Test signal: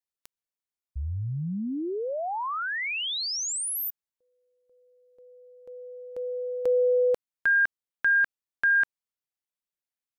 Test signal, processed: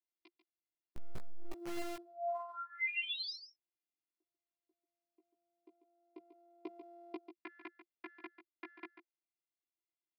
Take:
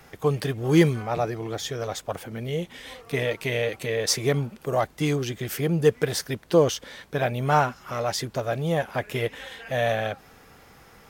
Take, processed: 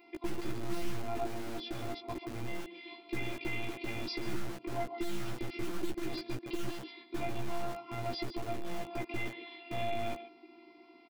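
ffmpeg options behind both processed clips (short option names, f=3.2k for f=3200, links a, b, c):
-filter_complex "[0:a]asplit=3[a][b][c];[a]bandpass=f=300:t=q:w=8,volume=0dB[d];[b]bandpass=f=870:t=q:w=8,volume=-6dB[e];[c]bandpass=f=2.24k:t=q:w=8,volume=-9dB[f];[d][e][f]amix=inputs=3:normalize=0,bass=f=250:g=15,treble=f=4k:g=4,aresample=11025,volume=20dB,asoftclip=hard,volume=-20dB,aresample=44100,afftfilt=real='hypot(re,im)*cos(PI*b)':imag='0':win_size=512:overlap=0.75,aemphasis=mode=production:type=50kf,aecho=1:1:142:0.266,acrossover=split=190[g][h];[g]acrusher=bits=6:dc=4:mix=0:aa=0.000001[i];[h]acompressor=threshold=-45dB:ratio=6:attack=8.5:release=36:knee=6[j];[i][j]amix=inputs=2:normalize=0,asplit=2[k][l];[l]adelay=16,volume=-2.5dB[m];[k][m]amix=inputs=2:normalize=0,volume=10dB"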